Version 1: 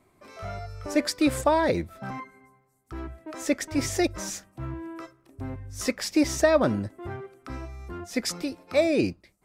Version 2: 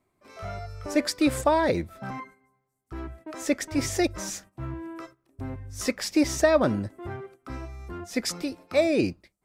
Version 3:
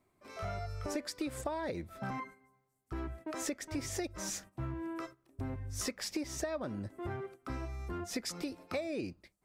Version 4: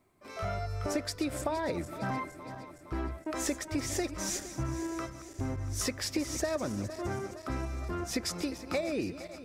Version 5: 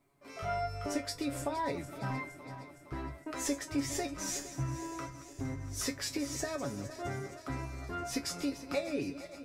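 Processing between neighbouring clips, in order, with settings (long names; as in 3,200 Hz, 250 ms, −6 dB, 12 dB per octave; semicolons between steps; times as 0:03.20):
noise gate −48 dBFS, range −10 dB
downward compressor 12 to 1, threshold −33 dBFS, peak gain reduction 18 dB; level −1 dB
feedback delay that plays each chunk backwards 232 ms, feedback 76%, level −13 dB; level +4.5 dB
tuned comb filter 140 Hz, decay 0.17 s, harmonics all, mix 90%; level +5.5 dB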